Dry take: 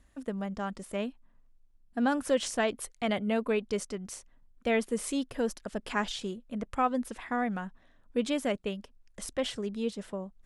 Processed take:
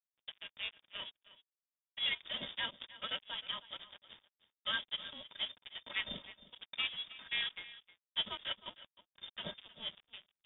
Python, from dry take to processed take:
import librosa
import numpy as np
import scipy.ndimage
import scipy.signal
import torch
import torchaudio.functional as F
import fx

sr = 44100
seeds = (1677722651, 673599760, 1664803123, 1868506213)

p1 = fx.peak_eq(x, sr, hz=230.0, db=-11.5, octaves=2.9)
p2 = fx.stiff_resonator(p1, sr, f0_hz=72.0, decay_s=0.22, stiffness=0.03)
p3 = fx.sample_hold(p2, sr, seeds[0], rate_hz=1100.0, jitter_pct=20)
p4 = p2 + (p3 * 10.0 ** (-4.0 / 20.0))
p5 = np.sign(p4) * np.maximum(np.abs(p4) - 10.0 ** (-50.0 / 20.0), 0.0)
p6 = p5 + fx.echo_single(p5, sr, ms=312, db=-17.0, dry=0)
p7 = fx.freq_invert(p6, sr, carrier_hz=3600)
y = p7 * 10.0 ** (3.0 / 20.0)